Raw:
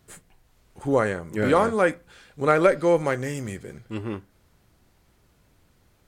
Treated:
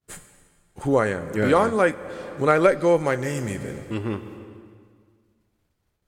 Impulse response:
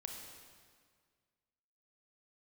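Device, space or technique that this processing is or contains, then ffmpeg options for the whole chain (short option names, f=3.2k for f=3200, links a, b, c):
ducked reverb: -filter_complex "[0:a]agate=range=-33dB:threshold=-48dB:ratio=3:detection=peak,asplit=3[a][b][c];[1:a]atrim=start_sample=2205[d];[b][d]afir=irnorm=-1:irlink=0[e];[c]apad=whole_len=267965[f];[e][f]sidechaincompress=threshold=-32dB:ratio=8:attack=26:release=450,volume=3.5dB[g];[a][g]amix=inputs=2:normalize=0"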